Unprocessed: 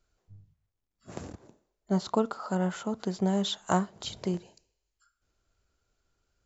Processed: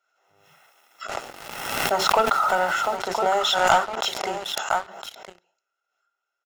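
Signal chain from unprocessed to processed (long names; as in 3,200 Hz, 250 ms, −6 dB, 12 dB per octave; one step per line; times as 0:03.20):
high-pass filter 560 Hz 12 dB per octave
single-tap delay 1,010 ms −9.5 dB
0:01.18–0:02.96: background noise pink −54 dBFS
convolution reverb RT60 0.25 s, pre-delay 3 ms, DRR 16 dB
leveller curve on the samples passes 3
background raised ahead of every attack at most 41 dB per second
level −3 dB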